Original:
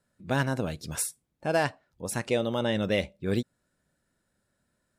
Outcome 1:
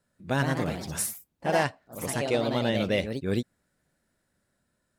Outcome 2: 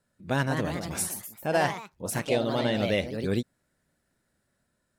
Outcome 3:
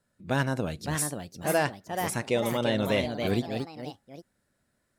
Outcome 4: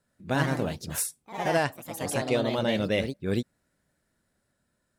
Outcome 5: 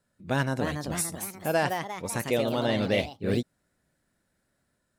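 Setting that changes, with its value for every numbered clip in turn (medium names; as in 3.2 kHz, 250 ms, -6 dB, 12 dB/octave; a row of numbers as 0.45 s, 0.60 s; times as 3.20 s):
ever faster or slower copies, time: 152 ms, 228 ms, 599 ms, 84 ms, 335 ms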